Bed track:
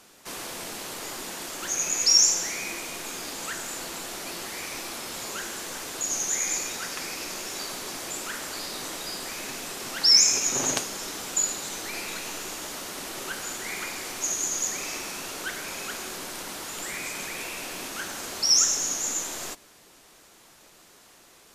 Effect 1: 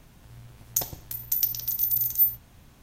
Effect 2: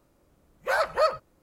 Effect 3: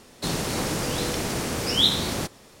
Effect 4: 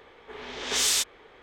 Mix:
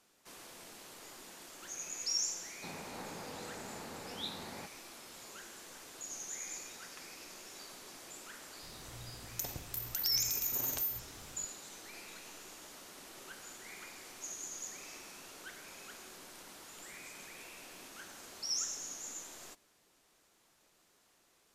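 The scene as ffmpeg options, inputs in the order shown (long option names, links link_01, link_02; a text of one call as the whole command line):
ffmpeg -i bed.wav -i cue0.wav -i cue1.wav -i cue2.wav -filter_complex "[0:a]volume=-16dB[link_01];[3:a]highpass=110,equalizer=frequency=130:width_type=q:width=4:gain=-10,equalizer=frequency=330:width_type=q:width=4:gain=-5,equalizer=frequency=850:width_type=q:width=4:gain=6,equalizer=frequency=3100:width_type=q:width=4:gain=-10,lowpass=frequency=4500:width=0.5412,lowpass=frequency=4500:width=1.3066[link_02];[1:a]acompressor=threshold=-29dB:ratio=6:attack=3.2:release=140:knee=1:detection=peak[link_03];[link_02]atrim=end=2.6,asetpts=PTS-STARTPTS,volume=-17.5dB,afade=type=in:duration=0.004:curve=hsin,afade=type=out:start_time=2.596:duration=0.004:curve=hsin,adelay=2400[link_04];[link_03]atrim=end=2.82,asetpts=PTS-STARTPTS,volume=-4dB,afade=type=in:duration=0.004:curve=hsin,afade=type=out:start_time=2.816:duration=0.004:curve=hsin,adelay=8630[link_05];[link_01][link_04][link_05]amix=inputs=3:normalize=0" out.wav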